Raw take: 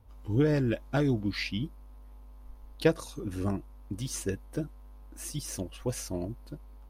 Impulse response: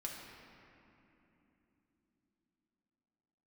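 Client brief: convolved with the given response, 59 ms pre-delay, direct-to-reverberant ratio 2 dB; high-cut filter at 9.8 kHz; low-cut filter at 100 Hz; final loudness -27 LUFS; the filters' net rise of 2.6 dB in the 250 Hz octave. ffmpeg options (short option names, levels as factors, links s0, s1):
-filter_complex "[0:a]highpass=100,lowpass=9800,equalizer=f=250:t=o:g=3.5,asplit=2[s0][s1];[1:a]atrim=start_sample=2205,adelay=59[s2];[s1][s2]afir=irnorm=-1:irlink=0,volume=0.841[s3];[s0][s3]amix=inputs=2:normalize=0,volume=1.26"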